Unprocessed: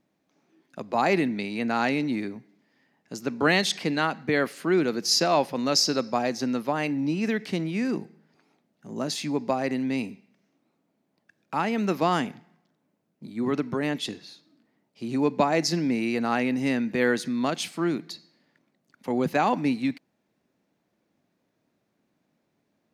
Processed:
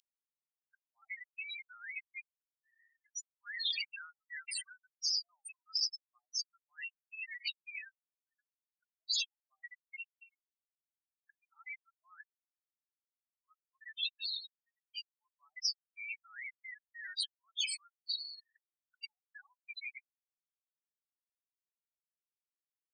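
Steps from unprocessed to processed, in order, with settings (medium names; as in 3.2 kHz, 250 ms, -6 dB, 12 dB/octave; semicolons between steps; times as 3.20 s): loudest bins only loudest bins 8; steep high-pass 2.9 kHz 48 dB/octave; treble shelf 8.1 kHz -7 dB; peak limiter -26 dBFS, peak gain reduction 8.5 dB; spectrum-flattening compressor 4:1; trim +5 dB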